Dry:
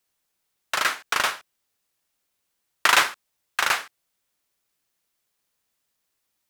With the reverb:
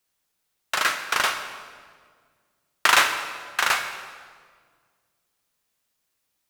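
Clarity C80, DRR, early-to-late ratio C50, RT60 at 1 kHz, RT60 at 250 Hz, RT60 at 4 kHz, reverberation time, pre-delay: 9.5 dB, 6.5 dB, 8.5 dB, 1.6 s, 2.3 s, 1.3 s, 1.8 s, 6 ms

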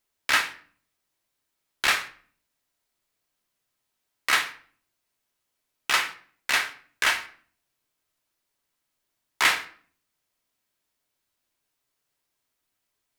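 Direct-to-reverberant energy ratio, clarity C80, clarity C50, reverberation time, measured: 5.5 dB, 18.0 dB, 13.5 dB, 0.50 s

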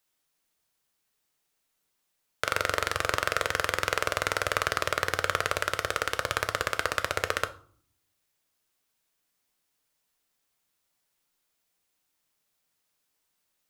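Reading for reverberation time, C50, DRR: 0.55 s, 16.5 dB, 9.5 dB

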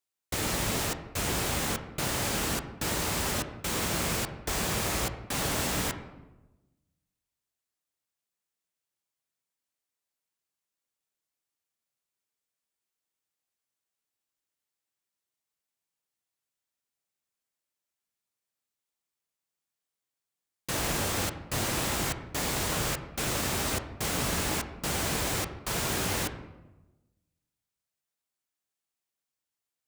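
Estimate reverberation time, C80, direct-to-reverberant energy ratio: 1.1 s, 12.0 dB, 7.0 dB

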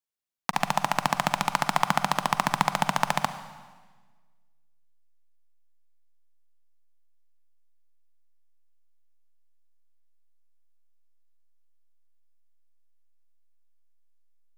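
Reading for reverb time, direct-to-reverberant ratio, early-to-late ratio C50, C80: 1.4 s, 11.0 dB, 11.5 dB, 13.0 dB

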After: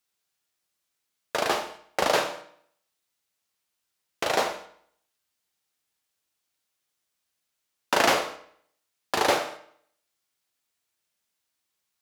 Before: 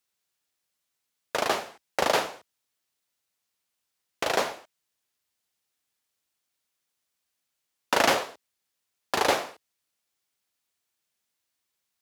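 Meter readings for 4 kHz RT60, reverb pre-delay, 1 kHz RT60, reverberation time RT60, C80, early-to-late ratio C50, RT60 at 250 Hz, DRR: 0.55 s, 6 ms, 0.65 s, 0.65 s, 14.0 dB, 11.0 dB, 0.65 s, 6.0 dB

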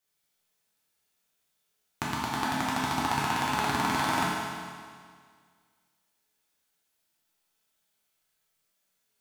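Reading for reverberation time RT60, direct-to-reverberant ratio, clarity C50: 1.9 s, -7.0 dB, -2.0 dB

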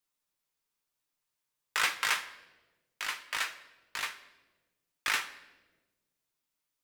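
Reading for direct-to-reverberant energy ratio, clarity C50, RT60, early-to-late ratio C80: 5.0 dB, 13.5 dB, 1.2 s, 16.0 dB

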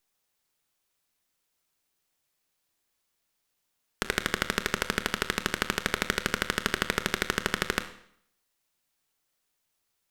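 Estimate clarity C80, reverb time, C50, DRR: 15.5 dB, 0.65 s, 12.5 dB, 10.0 dB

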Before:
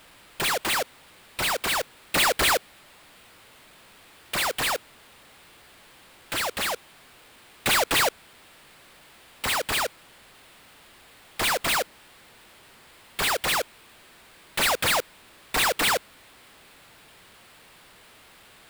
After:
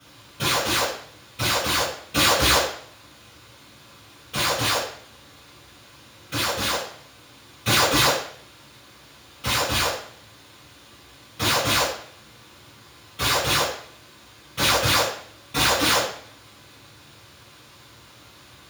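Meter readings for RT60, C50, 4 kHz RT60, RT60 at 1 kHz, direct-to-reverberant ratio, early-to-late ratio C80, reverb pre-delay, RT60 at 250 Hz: 0.60 s, 3.0 dB, 0.55 s, 0.60 s, -11.0 dB, 7.5 dB, 3 ms, 0.65 s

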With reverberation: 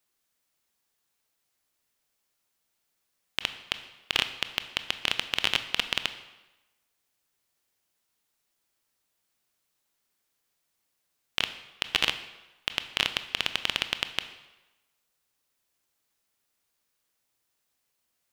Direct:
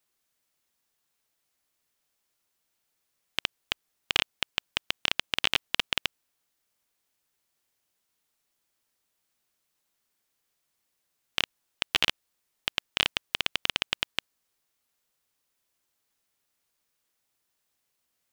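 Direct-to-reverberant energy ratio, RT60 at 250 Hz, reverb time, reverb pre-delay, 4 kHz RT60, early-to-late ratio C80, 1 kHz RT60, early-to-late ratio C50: 10.0 dB, 1.0 s, 1.0 s, 20 ms, 0.90 s, 13.5 dB, 1.1 s, 12.0 dB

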